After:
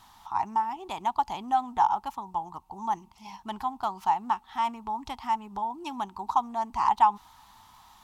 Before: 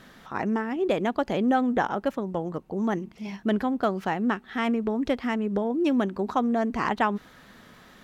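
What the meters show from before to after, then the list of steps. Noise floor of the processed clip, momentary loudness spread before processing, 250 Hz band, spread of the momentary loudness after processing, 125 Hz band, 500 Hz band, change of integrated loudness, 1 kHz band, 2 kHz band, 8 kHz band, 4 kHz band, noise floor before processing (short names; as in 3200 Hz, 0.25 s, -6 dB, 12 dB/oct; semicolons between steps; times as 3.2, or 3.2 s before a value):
-58 dBFS, 8 LU, -16.5 dB, 11 LU, under -10 dB, -15.5 dB, -2.5 dB, +5.0 dB, -11.0 dB, n/a, -3.5 dB, -53 dBFS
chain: EQ curve 100 Hz 0 dB, 150 Hz -12 dB, 370 Hz -15 dB, 530 Hz -25 dB, 880 Hz +14 dB, 1600 Hz -11 dB, 3000 Hz -1 dB, 5400 Hz +3 dB, 9600 Hz +5 dB; gain -3 dB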